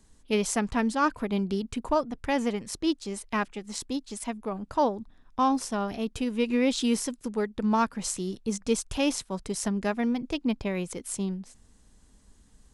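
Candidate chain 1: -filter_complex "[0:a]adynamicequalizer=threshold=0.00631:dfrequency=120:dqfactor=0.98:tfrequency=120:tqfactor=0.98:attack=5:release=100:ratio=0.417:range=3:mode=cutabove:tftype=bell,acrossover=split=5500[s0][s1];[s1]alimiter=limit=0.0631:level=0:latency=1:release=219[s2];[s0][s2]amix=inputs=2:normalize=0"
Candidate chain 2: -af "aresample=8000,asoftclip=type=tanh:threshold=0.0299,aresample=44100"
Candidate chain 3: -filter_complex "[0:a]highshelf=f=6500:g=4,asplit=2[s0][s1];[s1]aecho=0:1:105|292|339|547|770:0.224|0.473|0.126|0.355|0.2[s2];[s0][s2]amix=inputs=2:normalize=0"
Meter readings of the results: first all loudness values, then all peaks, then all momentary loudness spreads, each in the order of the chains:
-29.5 LUFS, -36.5 LUFS, -27.5 LUFS; -13.0 dBFS, -27.0 dBFS, -10.0 dBFS; 8 LU, 5 LU, 7 LU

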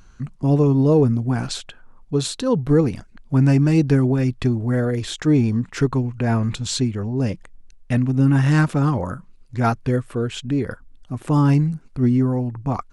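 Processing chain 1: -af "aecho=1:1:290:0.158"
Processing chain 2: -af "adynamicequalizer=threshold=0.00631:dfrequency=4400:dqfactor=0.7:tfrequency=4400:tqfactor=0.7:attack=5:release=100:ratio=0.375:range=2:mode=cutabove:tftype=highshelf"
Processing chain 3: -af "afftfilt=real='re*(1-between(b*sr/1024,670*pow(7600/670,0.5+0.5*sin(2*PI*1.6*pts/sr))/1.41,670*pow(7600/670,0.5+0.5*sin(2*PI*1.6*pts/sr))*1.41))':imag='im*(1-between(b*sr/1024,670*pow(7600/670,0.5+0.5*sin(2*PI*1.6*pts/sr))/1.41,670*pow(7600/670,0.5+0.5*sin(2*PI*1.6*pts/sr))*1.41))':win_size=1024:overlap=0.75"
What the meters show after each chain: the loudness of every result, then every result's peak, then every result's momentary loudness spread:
-20.0 LUFS, -20.0 LUFS, -20.0 LUFS; -6.0 dBFS, -6.0 dBFS, -6.0 dBFS; 12 LU, 10 LU, 10 LU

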